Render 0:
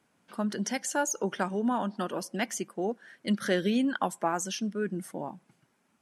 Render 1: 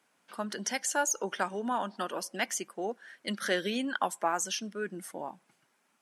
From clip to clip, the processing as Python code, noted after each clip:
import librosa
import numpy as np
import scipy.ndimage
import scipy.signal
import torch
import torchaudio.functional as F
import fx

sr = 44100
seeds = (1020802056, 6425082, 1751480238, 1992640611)

y = fx.highpass(x, sr, hz=690.0, slope=6)
y = y * 10.0 ** (2.0 / 20.0)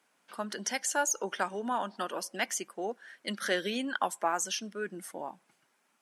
y = fx.low_shelf(x, sr, hz=130.0, db=-8.5)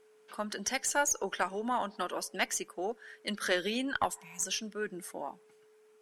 y = fx.spec_repair(x, sr, seeds[0], start_s=4.18, length_s=0.23, low_hz=210.0, high_hz=2100.0, source='before')
y = y + 10.0 ** (-60.0 / 20.0) * np.sin(2.0 * np.pi * 430.0 * np.arange(len(y)) / sr)
y = fx.cheby_harmonics(y, sr, harmonics=(2,), levels_db=(-16,), full_scale_db=-14.5)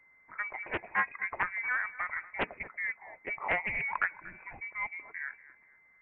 y = fx.echo_feedback(x, sr, ms=236, feedback_pct=32, wet_db=-18)
y = fx.freq_invert(y, sr, carrier_hz=2500)
y = fx.doppler_dist(y, sr, depth_ms=0.4)